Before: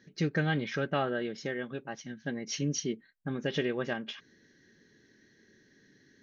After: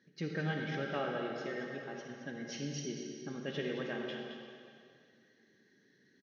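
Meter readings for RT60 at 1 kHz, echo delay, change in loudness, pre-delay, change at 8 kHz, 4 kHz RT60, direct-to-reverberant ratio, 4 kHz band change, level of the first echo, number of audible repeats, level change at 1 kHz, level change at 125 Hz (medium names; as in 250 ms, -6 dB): 2.3 s, 219 ms, -6.0 dB, 34 ms, no reading, 2.1 s, 0.0 dB, -6.0 dB, -10.5 dB, 1, -5.0 dB, -7.0 dB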